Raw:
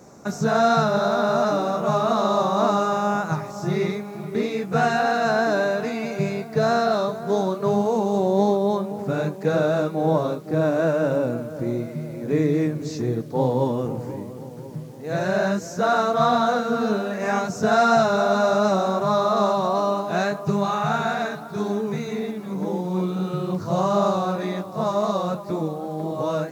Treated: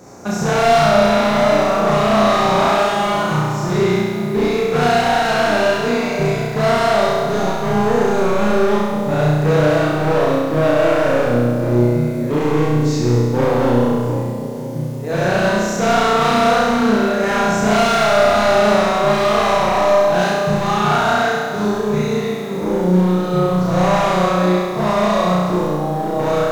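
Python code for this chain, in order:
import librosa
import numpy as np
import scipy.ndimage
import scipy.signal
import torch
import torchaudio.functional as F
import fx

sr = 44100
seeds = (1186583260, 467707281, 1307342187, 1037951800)

y = np.clip(10.0 ** (22.0 / 20.0) * x, -1.0, 1.0) / 10.0 ** (22.0 / 20.0)
y = fx.room_flutter(y, sr, wall_m=5.7, rt60_s=1.5)
y = y * librosa.db_to_amplitude(4.5)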